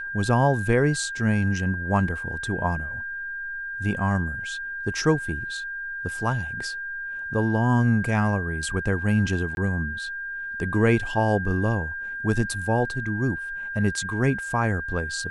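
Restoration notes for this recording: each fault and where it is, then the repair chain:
whine 1.6 kHz -30 dBFS
9.55–9.57 s: dropout 21 ms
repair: band-stop 1.6 kHz, Q 30; interpolate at 9.55 s, 21 ms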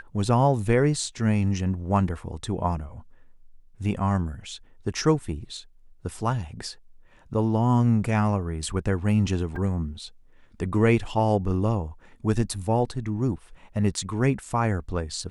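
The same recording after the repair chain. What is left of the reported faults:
nothing left

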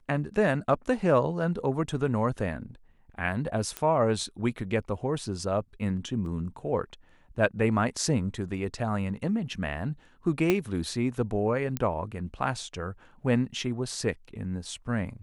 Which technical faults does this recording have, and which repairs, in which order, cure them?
3.77 s: pop -15 dBFS
6.26 s: dropout 2.4 ms
10.50 s: pop -10 dBFS
11.77 s: pop -14 dBFS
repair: de-click; interpolate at 6.26 s, 2.4 ms

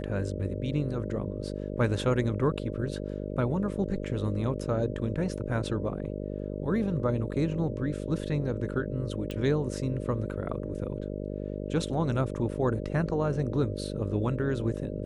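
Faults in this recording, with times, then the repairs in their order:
buzz 50 Hz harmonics 12 -35 dBFS
9.31 s: pop -23 dBFS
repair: de-click; de-hum 50 Hz, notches 12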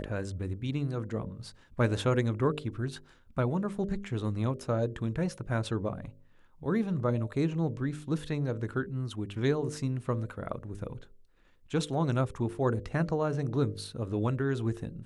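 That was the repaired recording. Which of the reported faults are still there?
nothing left

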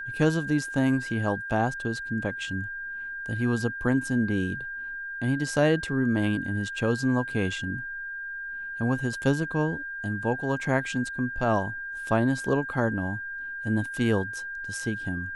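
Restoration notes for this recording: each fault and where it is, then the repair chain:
whine 1.6 kHz -33 dBFS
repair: band-stop 1.6 kHz, Q 30

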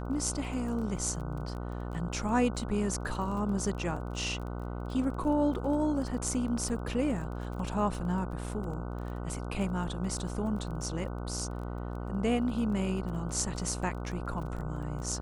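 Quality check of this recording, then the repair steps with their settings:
buzz 60 Hz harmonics 25 -37 dBFS
crackle 21 per s -39 dBFS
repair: de-click; de-hum 60 Hz, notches 25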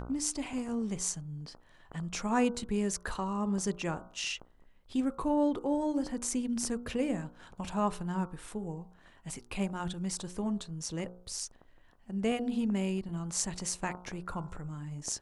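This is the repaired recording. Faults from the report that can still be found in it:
nothing left

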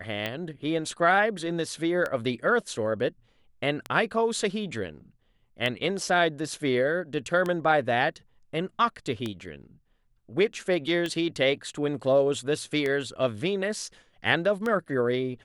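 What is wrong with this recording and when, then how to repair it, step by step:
tick 33 1/3 rpm -16 dBFS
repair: de-click

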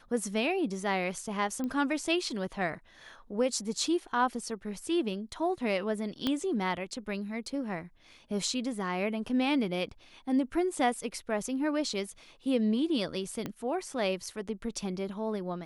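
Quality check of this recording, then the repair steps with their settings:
1.64 s: pop -23 dBFS
6.27 s: pop -16 dBFS
13.46 s: pop -21 dBFS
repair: de-click

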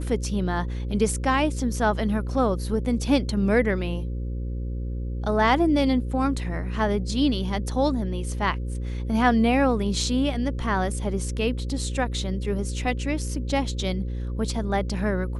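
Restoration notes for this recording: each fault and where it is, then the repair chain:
buzz 60 Hz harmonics 9 -29 dBFS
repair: de-hum 60 Hz, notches 9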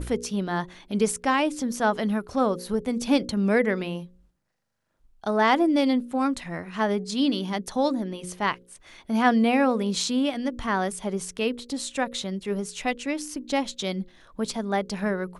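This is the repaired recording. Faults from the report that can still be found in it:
nothing left

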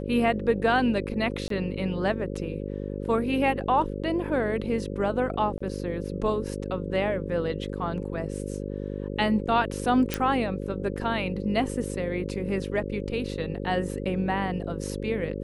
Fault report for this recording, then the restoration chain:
buzz 50 Hz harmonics 11 -33 dBFS
1.48–1.50 s: dropout 23 ms
5.58–5.61 s: dropout 25 ms
10.14 s: pop -10 dBFS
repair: de-click; de-hum 50 Hz, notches 11; interpolate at 1.48 s, 23 ms; interpolate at 5.58 s, 25 ms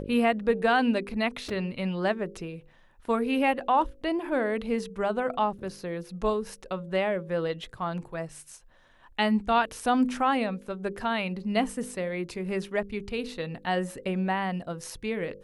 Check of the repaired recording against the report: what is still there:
nothing left

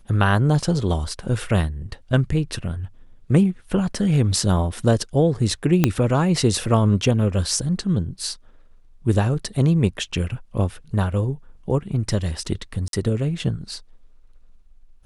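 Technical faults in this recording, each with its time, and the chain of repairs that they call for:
5.84 s: pop -2 dBFS
12.88–12.93 s: dropout 52 ms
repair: de-click; interpolate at 12.88 s, 52 ms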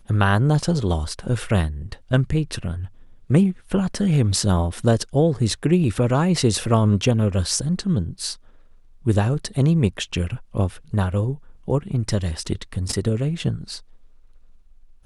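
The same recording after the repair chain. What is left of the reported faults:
5.84 s: pop

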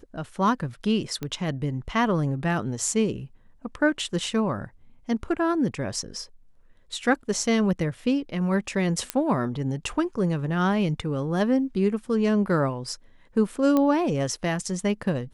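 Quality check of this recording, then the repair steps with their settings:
1.23 s: pop -17 dBFS
9.10 s: pop -8 dBFS
13.77 s: pop -11 dBFS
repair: de-click

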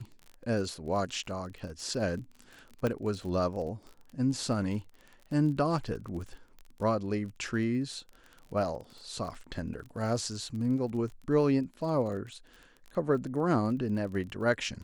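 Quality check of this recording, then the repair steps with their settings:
crackle 30 per s -39 dBFS
2.87 s: pop -18 dBFS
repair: de-click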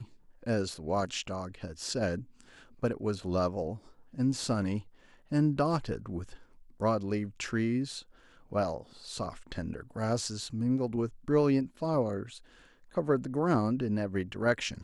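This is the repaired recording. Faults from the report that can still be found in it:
2.87 s: pop

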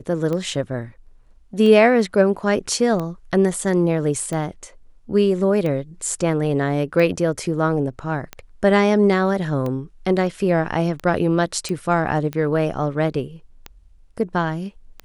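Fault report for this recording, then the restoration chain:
tick 45 rpm -15 dBFS
11.69 s: pop -14 dBFS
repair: de-click

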